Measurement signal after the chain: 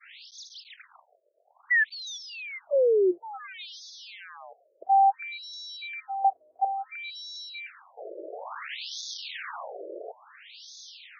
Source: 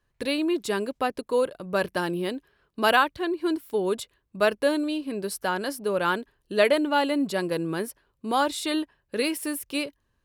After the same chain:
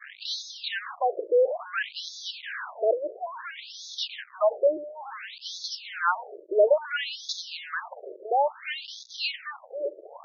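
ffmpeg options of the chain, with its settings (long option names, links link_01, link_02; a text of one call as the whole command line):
ffmpeg -i in.wav -filter_complex "[0:a]aeval=exprs='val(0)+0.5*0.075*sgn(val(0))':channel_layout=same,highpass=130,acrossover=split=650|4500[link_01][link_02][link_03];[link_01]acrusher=bits=5:mix=0:aa=0.000001[link_04];[link_04][link_02][link_03]amix=inputs=3:normalize=0,agate=range=-33dB:threshold=-25dB:ratio=3:detection=peak,afftfilt=real='re*between(b*sr/1024,450*pow(4800/450,0.5+0.5*sin(2*PI*0.58*pts/sr))/1.41,450*pow(4800/450,0.5+0.5*sin(2*PI*0.58*pts/sr))*1.41)':imag='im*between(b*sr/1024,450*pow(4800/450,0.5+0.5*sin(2*PI*0.58*pts/sr))/1.41,450*pow(4800/450,0.5+0.5*sin(2*PI*0.58*pts/sr))*1.41)':win_size=1024:overlap=0.75" out.wav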